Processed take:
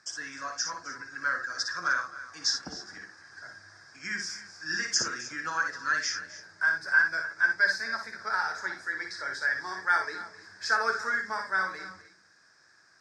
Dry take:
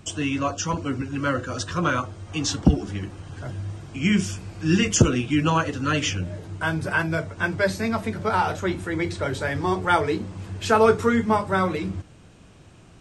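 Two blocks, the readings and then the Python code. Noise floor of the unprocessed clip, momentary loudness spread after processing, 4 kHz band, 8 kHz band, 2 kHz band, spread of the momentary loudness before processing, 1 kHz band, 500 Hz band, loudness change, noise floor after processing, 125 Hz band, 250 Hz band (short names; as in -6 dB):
-49 dBFS, 16 LU, -2.5 dB, -4.5 dB, +2.0 dB, 12 LU, -7.5 dB, -19.0 dB, -5.5 dB, -61 dBFS, -30.5 dB, -25.5 dB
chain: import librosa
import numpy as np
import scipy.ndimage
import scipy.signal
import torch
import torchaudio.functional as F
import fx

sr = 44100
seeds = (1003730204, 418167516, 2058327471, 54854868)

y = fx.double_bandpass(x, sr, hz=2900.0, octaves=1.6)
y = fx.echo_multitap(y, sr, ms=(58, 260, 304), db=(-6.0, -17.5, -17.0))
y = y * librosa.db_to_amplitude(5.5)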